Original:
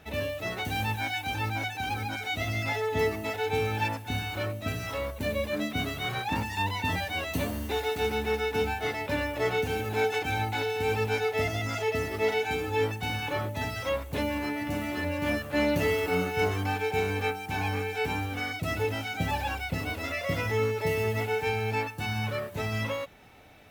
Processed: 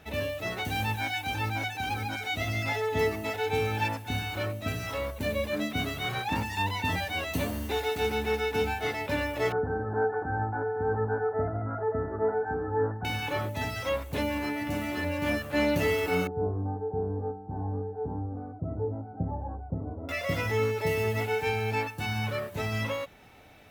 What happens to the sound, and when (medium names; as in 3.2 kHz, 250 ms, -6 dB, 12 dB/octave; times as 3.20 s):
9.52–13.05 s: steep low-pass 1.7 kHz 96 dB/octave
16.27–20.09 s: Gaussian low-pass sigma 11 samples